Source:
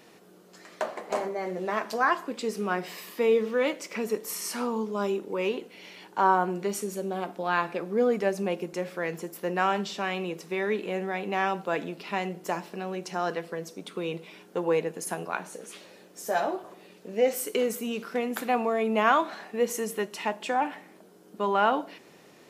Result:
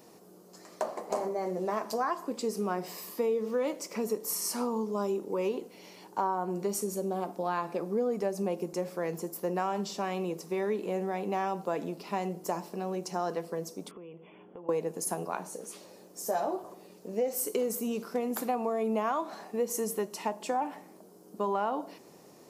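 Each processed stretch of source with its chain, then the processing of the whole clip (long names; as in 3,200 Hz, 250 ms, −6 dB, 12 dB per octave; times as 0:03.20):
0:13.91–0:14.69: downward compressor 4 to 1, threshold −46 dBFS + linear-phase brick-wall low-pass 3,500 Hz
whole clip: flat-topped bell 2,300 Hz −9 dB; downward compressor 6 to 1, threshold −26 dBFS; high-shelf EQ 12,000 Hz +6 dB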